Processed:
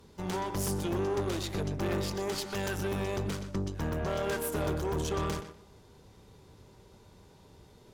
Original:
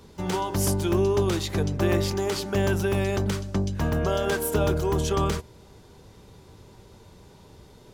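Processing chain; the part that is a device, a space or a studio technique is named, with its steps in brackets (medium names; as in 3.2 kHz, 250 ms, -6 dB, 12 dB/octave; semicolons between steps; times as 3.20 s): 2.38–2.78 s: tilt shelf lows -5 dB; rockabilly slapback (valve stage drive 24 dB, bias 0.65; tape echo 121 ms, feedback 22%, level -9 dB, low-pass 4.1 kHz); trim -3 dB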